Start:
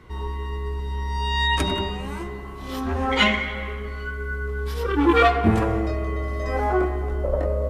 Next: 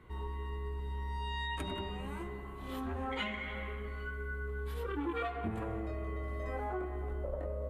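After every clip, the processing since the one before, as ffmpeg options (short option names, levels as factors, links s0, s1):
-af "equalizer=f=5400:t=o:w=0.58:g=-13,acompressor=threshold=0.0501:ratio=4,volume=0.355"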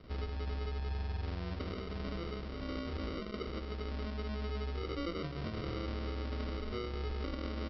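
-af "alimiter=level_in=2.99:limit=0.0631:level=0:latency=1:release=289,volume=0.335,aresample=11025,acrusher=samples=13:mix=1:aa=0.000001,aresample=44100,volume=1.5"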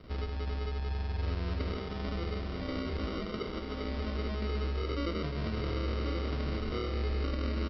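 -af "aecho=1:1:1082:0.596,volume=1.41"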